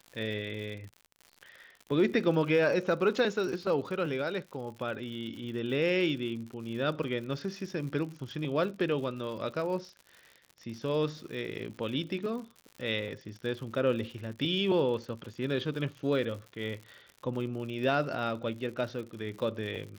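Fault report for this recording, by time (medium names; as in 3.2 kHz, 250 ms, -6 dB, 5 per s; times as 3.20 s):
crackle 94 per s -40 dBFS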